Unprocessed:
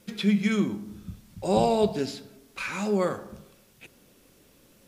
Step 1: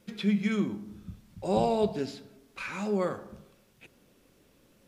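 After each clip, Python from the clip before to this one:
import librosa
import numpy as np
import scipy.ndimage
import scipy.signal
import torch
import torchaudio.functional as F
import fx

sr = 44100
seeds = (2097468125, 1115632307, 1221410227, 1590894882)

y = fx.high_shelf(x, sr, hz=4700.0, db=-6.5)
y = F.gain(torch.from_numpy(y), -3.5).numpy()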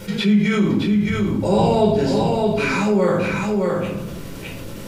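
y = x + 10.0 ** (-6.0 / 20.0) * np.pad(x, (int(616 * sr / 1000.0), 0))[:len(x)]
y = fx.room_shoebox(y, sr, seeds[0], volume_m3=580.0, walls='furnished', distance_m=4.6)
y = fx.env_flatten(y, sr, amount_pct=50)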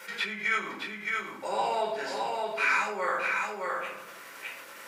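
y = scipy.signal.sosfilt(scipy.signal.butter(2, 1200.0, 'highpass', fs=sr, output='sos'), x)
y = fx.high_shelf_res(y, sr, hz=2500.0, db=-7.0, q=1.5)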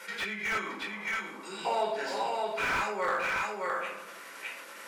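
y = fx.spec_repair(x, sr, seeds[1], start_s=0.88, length_s=0.75, low_hz=400.0, high_hz=1300.0, source='before')
y = fx.brickwall_bandpass(y, sr, low_hz=150.0, high_hz=13000.0)
y = fx.slew_limit(y, sr, full_power_hz=72.0)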